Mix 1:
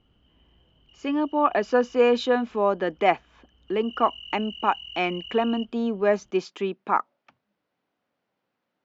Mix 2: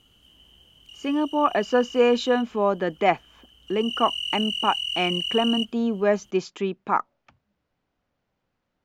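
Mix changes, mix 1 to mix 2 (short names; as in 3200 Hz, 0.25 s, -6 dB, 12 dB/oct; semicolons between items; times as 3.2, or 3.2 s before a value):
speech: remove BPF 210–5700 Hz; background: remove tape spacing loss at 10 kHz 41 dB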